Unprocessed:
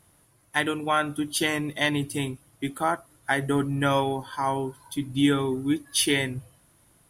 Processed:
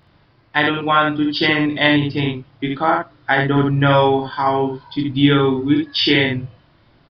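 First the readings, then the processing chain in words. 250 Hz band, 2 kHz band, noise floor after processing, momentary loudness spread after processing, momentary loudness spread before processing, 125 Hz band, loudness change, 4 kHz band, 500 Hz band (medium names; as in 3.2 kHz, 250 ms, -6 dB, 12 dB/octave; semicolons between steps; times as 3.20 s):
+9.0 dB, +9.5 dB, -55 dBFS, 9 LU, 9 LU, +10.5 dB, +9.0 dB, +9.5 dB, +10.0 dB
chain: resampled via 11.025 kHz; early reflections 27 ms -6 dB, 71 ms -3.5 dB; trim +7 dB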